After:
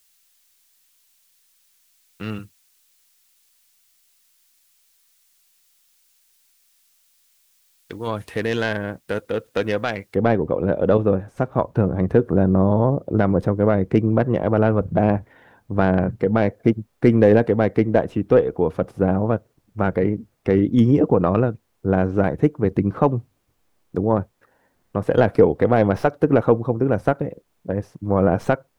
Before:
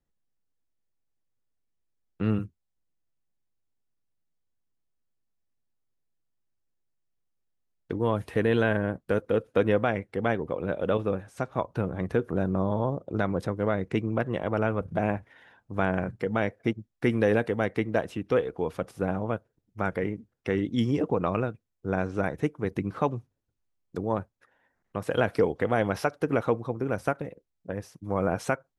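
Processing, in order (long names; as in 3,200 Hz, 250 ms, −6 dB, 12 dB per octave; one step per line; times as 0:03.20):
stylus tracing distortion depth 0.069 ms
bit-depth reduction 12 bits, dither triangular
tilt shelving filter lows −8 dB, about 1,500 Hz, from 0:08.06 lows −3.5 dB, from 0:10.14 lows +7.5 dB
level +3.5 dB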